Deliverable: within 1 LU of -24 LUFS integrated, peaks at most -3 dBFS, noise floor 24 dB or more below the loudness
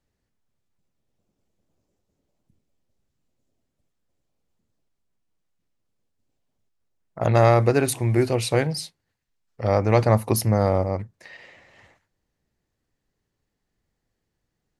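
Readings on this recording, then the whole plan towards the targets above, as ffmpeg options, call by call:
loudness -21.5 LUFS; peak level -3.5 dBFS; loudness target -24.0 LUFS
-> -af "volume=0.75"

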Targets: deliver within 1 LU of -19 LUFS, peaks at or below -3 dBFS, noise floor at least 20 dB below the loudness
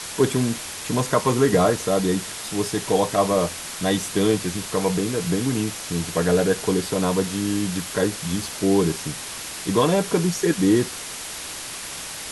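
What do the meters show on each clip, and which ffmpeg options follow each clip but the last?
noise floor -34 dBFS; noise floor target -43 dBFS; loudness -23.0 LUFS; peak level -5.5 dBFS; loudness target -19.0 LUFS
-> -af "afftdn=nr=9:nf=-34"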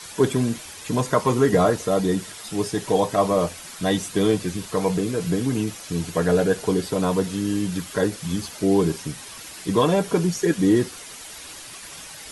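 noise floor -40 dBFS; noise floor target -43 dBFS
-> -af "afftdn=nr=6:nf=-40"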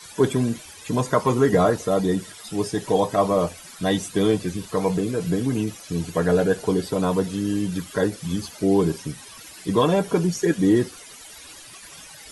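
noise floor -43 dBFS; loudness -23.0 LUFS; peak level -5.5 dBFS; loudness target -19.0 LUFS
-> -af "volume=1.58,alimiter=limit=0.708:level=0:latency=1"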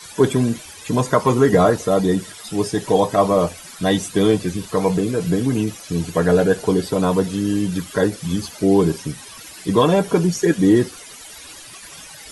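loudness -19.0 LUFS; peak level -3.0 dBFS; noise floor -39 dBFS

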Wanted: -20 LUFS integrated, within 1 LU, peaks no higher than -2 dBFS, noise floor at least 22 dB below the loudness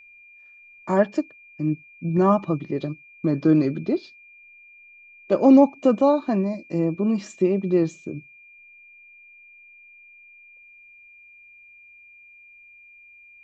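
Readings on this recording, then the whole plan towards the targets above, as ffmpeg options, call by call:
steady tone 2.4 kHz; tone level -47 dBFS; loudness -22.0 LUFS; peak level -5.5 dBFS; loudness target -20.0 LUFS
-> -af "bandreject=f=2400:w=30"
-af "volume=1.26"

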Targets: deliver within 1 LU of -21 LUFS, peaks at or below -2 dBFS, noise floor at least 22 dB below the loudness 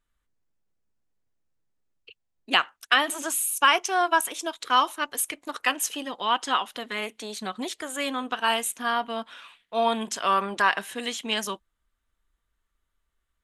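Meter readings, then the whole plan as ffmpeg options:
loudness -26.0 LUFS; peak level -5.0 dBFS; loudness target -21.0 LUFS
-> -af "volume=1.78,alimiter=limit=0.794:level=0:latency=1"

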